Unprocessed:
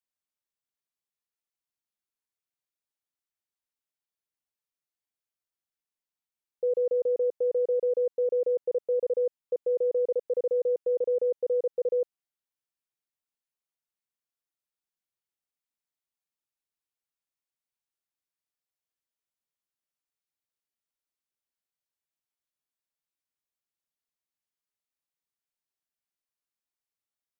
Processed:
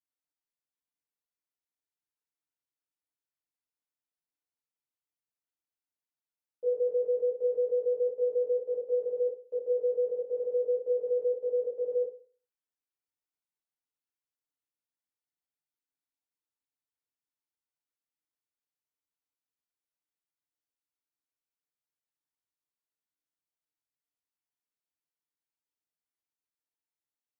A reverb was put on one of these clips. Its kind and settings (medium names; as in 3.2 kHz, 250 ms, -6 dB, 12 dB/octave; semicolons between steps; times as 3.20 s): FDN reverb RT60 0.41 s, low-frequency decay 0.95×, high-frequency decay 0.5×, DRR -6.5 dB; trim -13 dB